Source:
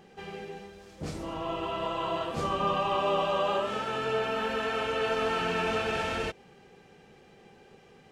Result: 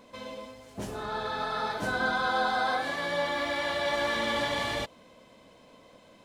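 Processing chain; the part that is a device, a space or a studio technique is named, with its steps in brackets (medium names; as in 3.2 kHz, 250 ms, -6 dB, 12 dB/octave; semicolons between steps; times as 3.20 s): nightcore (tape speed +30%)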